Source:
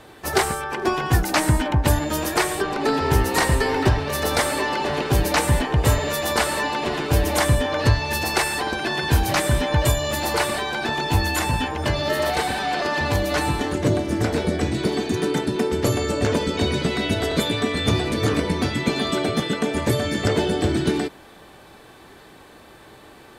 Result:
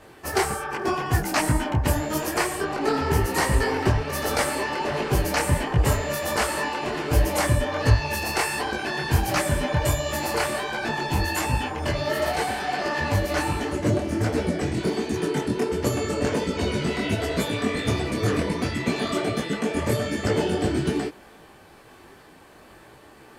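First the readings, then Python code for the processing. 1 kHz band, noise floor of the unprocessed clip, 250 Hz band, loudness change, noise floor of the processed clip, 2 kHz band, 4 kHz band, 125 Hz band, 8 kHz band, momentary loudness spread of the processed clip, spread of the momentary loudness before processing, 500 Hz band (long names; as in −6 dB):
−3.0 dB, −47 dBFS, −2.5 dB, −3.0 dB, −49 dBFS, −3.0 dB, −5.5 dB, −2.5 dB, −3.0 dB, 4 LU, 4 LU, −2.5 dB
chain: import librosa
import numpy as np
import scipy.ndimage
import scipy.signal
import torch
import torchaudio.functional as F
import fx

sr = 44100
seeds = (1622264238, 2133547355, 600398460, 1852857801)

y = fx.peak_eq(x, sr, hz=3700.0, db=-8.0, octaves=0.21)
y = fx.detune_double(y, sr, cents=48)
y = y * 10.0 ** (1.0 / 20.0)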